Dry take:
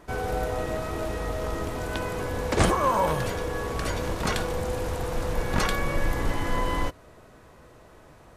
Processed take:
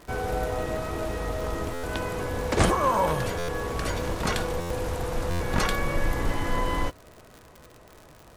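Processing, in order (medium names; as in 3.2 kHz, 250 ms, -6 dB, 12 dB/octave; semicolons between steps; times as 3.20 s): crackle 91 per s -36 dBFS; buffer glitch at 1.73/3.38/4.60/5.30 s, samples 512, times 8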